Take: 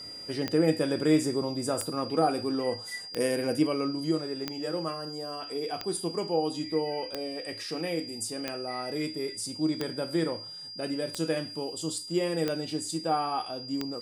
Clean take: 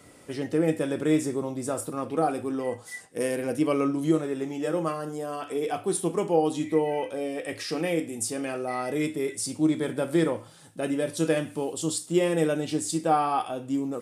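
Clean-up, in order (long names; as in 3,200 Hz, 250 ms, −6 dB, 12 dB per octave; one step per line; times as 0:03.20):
click removal
notch filter 4,800 Hz, Q 30
level 0 dB, from 0:03.67 +5 dB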